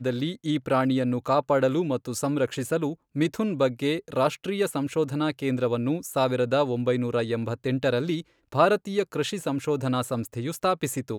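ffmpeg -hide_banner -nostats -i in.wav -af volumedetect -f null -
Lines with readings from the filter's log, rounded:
mean_volume: -25.7 dB
max_volume: -6.6 dB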